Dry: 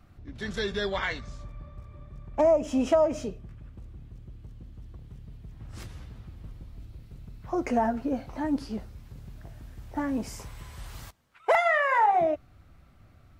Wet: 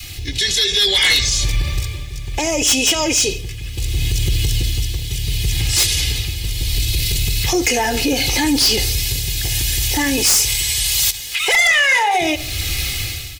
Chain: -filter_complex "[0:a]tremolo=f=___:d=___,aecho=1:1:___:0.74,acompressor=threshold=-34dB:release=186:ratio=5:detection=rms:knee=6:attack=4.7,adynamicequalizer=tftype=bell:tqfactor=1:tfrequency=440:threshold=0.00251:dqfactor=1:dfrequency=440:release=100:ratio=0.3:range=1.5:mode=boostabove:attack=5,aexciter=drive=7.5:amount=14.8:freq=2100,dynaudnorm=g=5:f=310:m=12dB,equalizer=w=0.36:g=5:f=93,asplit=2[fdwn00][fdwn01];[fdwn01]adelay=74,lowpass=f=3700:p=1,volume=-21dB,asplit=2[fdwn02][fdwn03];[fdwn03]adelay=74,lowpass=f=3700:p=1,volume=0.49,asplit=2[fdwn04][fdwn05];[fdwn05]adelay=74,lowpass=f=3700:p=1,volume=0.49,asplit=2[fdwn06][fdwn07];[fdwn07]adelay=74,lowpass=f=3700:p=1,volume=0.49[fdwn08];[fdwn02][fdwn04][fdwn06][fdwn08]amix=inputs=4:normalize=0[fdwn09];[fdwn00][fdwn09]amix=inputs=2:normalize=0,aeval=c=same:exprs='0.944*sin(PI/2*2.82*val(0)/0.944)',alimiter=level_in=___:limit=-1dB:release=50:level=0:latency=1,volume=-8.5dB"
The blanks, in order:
0.7, 0.69, 2.4, 8.5dB